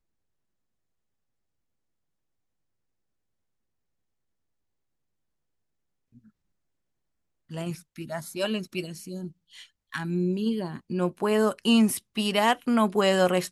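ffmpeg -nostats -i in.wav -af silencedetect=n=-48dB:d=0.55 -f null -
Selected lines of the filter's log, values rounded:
silence_start: 0.00
silence_end: 6.15 | silence_duration: 6.15
silence_start: 6.26
silence_end: 7.50 | silence_duration: 1.23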